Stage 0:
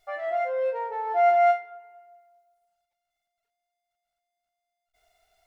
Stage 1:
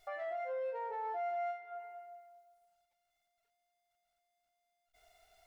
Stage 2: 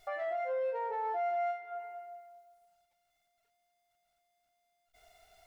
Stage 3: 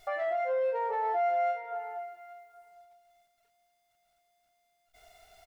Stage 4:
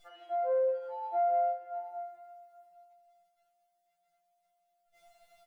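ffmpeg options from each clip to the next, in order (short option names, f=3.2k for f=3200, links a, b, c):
-af "acompressor=threshold=-31dB:ratio=6,alimiter=level_in=10dB:limit=-24dB:level=0:latency=1:release=330,volume=-10dB,volume=1dB"
-af "equalizer=f=150:w=0.61:g=3.5,volume=4dB"
-af "aecho=1:1:821:0.141,volume=4.5dB"
-af "afftfilt=real='re*2.83*eq(mod(b,8),0)':imag='im*2.83*eq(mod(b,8),0)':win_size=2048:overlap=0.75,volume=-5dB"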